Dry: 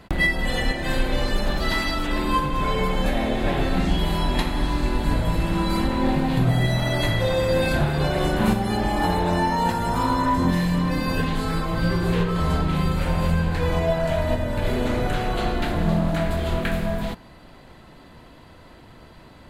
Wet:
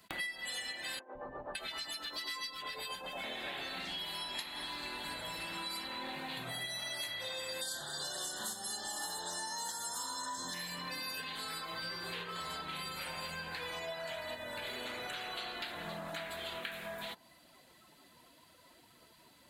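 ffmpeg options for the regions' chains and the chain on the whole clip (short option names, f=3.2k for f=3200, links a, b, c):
-filter_complex "[0:a]asettb=1/sr,asplit=3[a][b][c];[a]atrim=end=0.994[d];[b]atrim=start=0.99:end=3.24,asetpts=PTS-STARTPTS,afade=t=in:d=0.004:c=qsin,afade=t=out:st=2.246:d=0.004:c=qsin,tremolo=f=7.8:d=0.68,acrossover=split=260|1300[e][f][g];[e]adelay=160[h];[g]adelay=560[i];[h][f][i]amix=inputs=3:normalize=0,atrim=end_sample=99225[j];[c]atrim=start=3.236[k];[d][j]acrossfade=d=0.004:c1=hsin:c2=qsin[l];[l][k]acrossfade=d=0.004:c1=qsin:c2=hsin,asettb=1/sr,asplit=3[m][n][o];[m]atrim=end=7.614[p];[n]atrim=start=7.61:end=10.54,asetpts=PTS-STARTPTS,afade=t=in:d=0.004:c=qsin,afade=t=out:st=2.926:d=0.004:c=qsin,asuperstop=centerf=2400:order=12:qfactor=2.2,equalizer=f=6.8k:t=o:w=1.1:g=9.5[q];[o]atrim=start=10.536[r];[p][q]acrossfade=d=0.004:c1=hsin:c2=qsin[s];[s][r]acrossfade=d=0.004:c1=qsin:c2=hsin,afftdn=nr=15:nf=-41,aderivative,acompressor=threshold=-53dB:ratio=5,volume=13dB"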